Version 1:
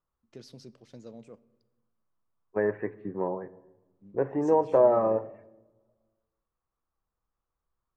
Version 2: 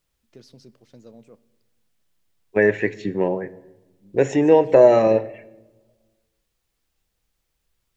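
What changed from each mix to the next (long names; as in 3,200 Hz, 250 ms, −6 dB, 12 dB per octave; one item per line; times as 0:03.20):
second voice: remove transistor ladder low-pass 1,300 Hz, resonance 60%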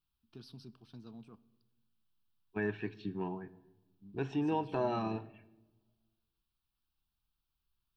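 second voice −10.0 dB
master: add phaser with its sweep stopped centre 2,000 Hz, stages 6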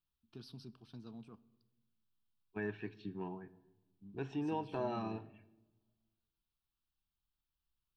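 second voice −5.0 dB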